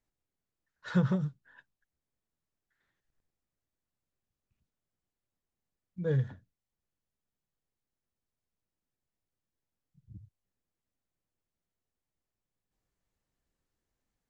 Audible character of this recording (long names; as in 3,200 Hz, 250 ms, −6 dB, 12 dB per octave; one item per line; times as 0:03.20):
background noise floor −90 dBFS
spectral slope −8.0 dB per octave